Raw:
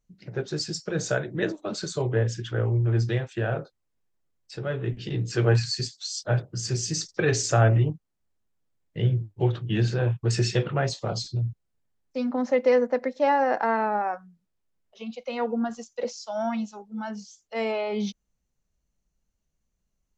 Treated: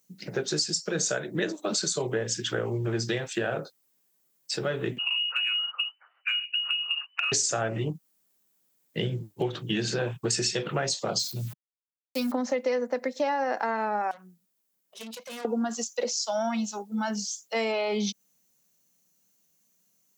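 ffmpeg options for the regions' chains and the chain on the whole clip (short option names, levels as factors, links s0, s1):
-filter_complex "[0:a]asettb=1/sr,asplit=3[s0][s1][s2];[s0]atrim=end=4.984[s3];[s1]atrim=start=4.98:end=7.32,asetpts=PTS-STARTPTS,afade=t=in:d=0.004:c=qsin,afade=t=out:st=2.336:d=0.004:c=qsin,lowpass=f=2600:t=q:w=0.5098,lowpass=f=2600:t=q:w=0.6013,lowpass=f=2600:t=q:w=0.9,lowpass=f=2600:t=q:w=2.563,afreqshift=-3000,highpass=f=800:w=0.5412,highpass=f=800:w=1.3066,acompressor=threshold=0.0355:ratio=6:attack=3.2:release=140:knee=1:detection=peak[s4];[s2]atrim=start=7.316[s5];[s3][s4]acrossfade=d=0.004:c1=hsin:c2=qsin[s6];[s6][s5]acrossfade=d=0.004:c1=qsin:c2=hsin,asettb=1/sr,asplit=3[s7][s8][s9];[s7]atrim=end=11.194[s10];[s8]atrim=start=11.19:end=12.32,asetpts=PTS-STARTPTS,afade=t=in:d=0.004:c=qsin,afade=t=out:st=1.126:d=0.004:c=qsin,equalizer=f=440:w=0.74:g=-6,aeval=exprs='val(0)*gte(abs(val(0)),0.00355)':c=same[s11];[s9]atrim=start=12.316[s12];[s10][s11]acrossfade=d=0.004:c1=hsin:c2=qsin[s13];[s13][s12]acrossfade=d=0.004:c1=qsin:c2=hsin,asettb=1/sr,asplit=3[s14][s15][s16];[s14]atrim=end=14.114[s17];[s15]atrim=start=14.11:end=15.45,asetpts=PTS-STARTPTS,afade=t=in:d=0.004:c=qsin,afade=t=out:st=1.336:d=0.004:c=qsin,acompressor=threshold=0.0158:ratio=4:attack=3.2:release=140:knee=1:detection=peak,aeval=exprs='(tanh(158*val(0)+0.8)-tanh(0.8))/158':c=same[s18];[s16]atrim=start=15.446[s19];[s17][s18]acrossfade=d=0.004:c1=hsin:c2=qsin[s20];[s20][s19]acrossfade=d=0.004:c1=qsin:c2=hsin,highpass=f=160:w=0.5412,highpass=f=160:w=1.3066,aemphasis=mode=production:type=75fm,acompressor=threshold=0.0251:ratio=5,volume=2.11"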